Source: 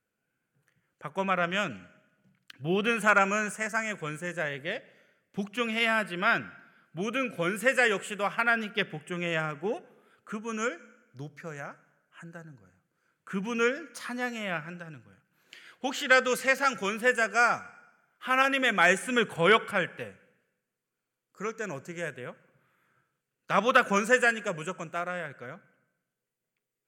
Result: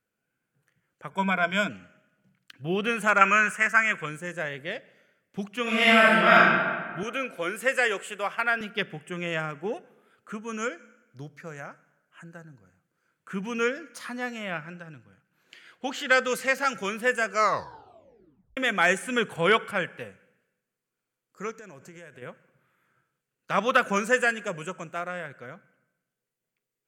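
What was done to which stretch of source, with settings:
1.11–1.69 s: rippled EQ curve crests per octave 1.7, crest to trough 15 dB
3.21–4.06 s: high-order bell 1.8 kHz +10 dB
5.62–6.39 s: reverb throw, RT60 1.6 s, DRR -9 dB
7.03–8.61 s: high-pass 300 Hz
14.10–16.06 s: treble shelf 8.5 kHz -5.5 dB
17.28 s: tape stop 1.29 s
21.51–22.22 s: compression, threshold -42 dBFS

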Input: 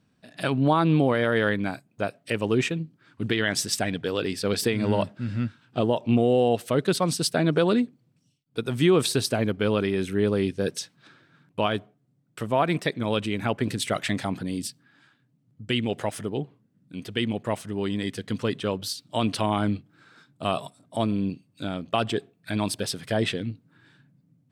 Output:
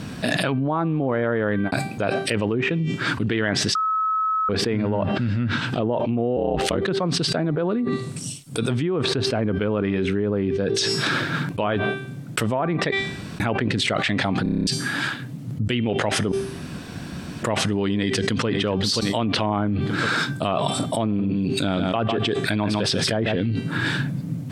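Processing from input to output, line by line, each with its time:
1.31–1.72 s: studio fade out
3.75–4.49 s: bleep 1.29 kHz -15.5 dBFS
6.36–6.85 s: ring modulator 45 Hz
7.71–8.71 s: peaking EQ 8.7 kHz +14.5 dB
10.64–11.76 s: de-hum 109.9 Hz, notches 4
12.92–13.40 s: room tone
14.43 s: stutter in place 0.03 s, 8 plays
16.32–17.43 s: room tone
17.96–18.47 s: echo throw 530 ms, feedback 25%, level -10 dB
19.35–19.75 s: short-mantissa float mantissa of 4-bit
21.04–23.36 s: delay 151 ms -7.5 dB
whole clip: de-hum 390.4 Hz, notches 35; low-pass that closes with the level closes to 1.6 kHz, closed at -19.5 dBFS; level flattener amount 100%; trim -6 dB

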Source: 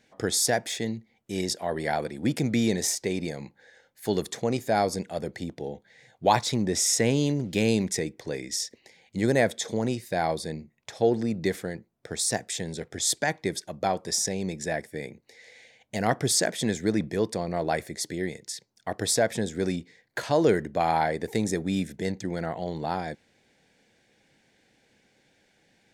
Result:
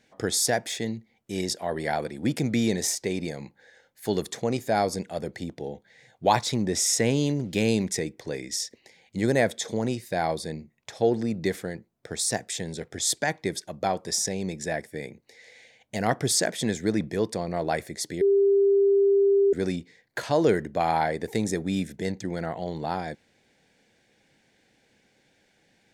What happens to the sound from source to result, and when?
18.21–19.53 s: bleep 397 Hz -16.5 dBFS

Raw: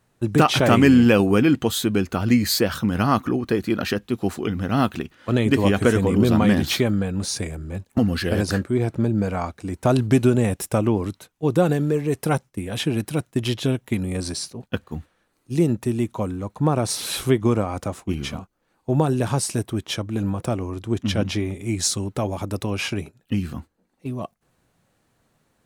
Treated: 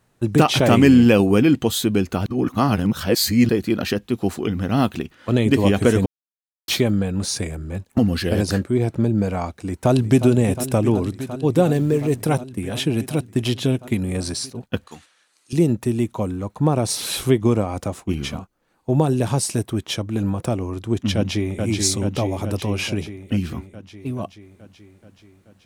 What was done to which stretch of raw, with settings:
2.26–3.49 s: reverse
6.06–6.68 s: mute
9.62–10.27 s: echo throw 360 ms, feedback 85%, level -12 dB
11.74–12.22 s: companding laws mixed up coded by mu
14.87–15.53 s: frequency weighting ITU-R 468
21.15–21.60 s: echo throw 430 ms, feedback 70%, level -3.5 dB
whole clip: dynamic bell 1.4 kHz, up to -5 dB, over -38 dBFS, Q 1.4; trim +2 dB

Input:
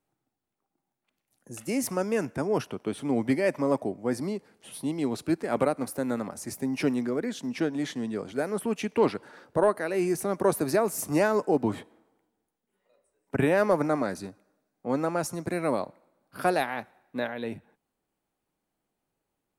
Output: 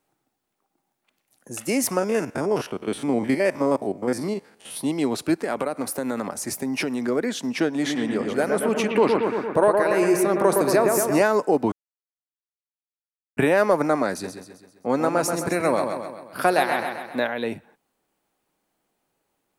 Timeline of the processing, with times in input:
1.99–4.77 s: spectrogram pixelated in time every 50 ms
5.44–7.08 s: compression, threshold -28 dBFS
7.74–11.22 s: bucket-brigade echo 114 ms, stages 2048, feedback 64%, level -4 dB
11.72–13.37 s: mute
14.11–17.20 s: feedback delay 131 ms, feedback 50%, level -7.5 dB
whole clip: bass shelf 210 Hz -9 dB; compression 1.5:1, threshold -29 dBFS; trim +9 dB

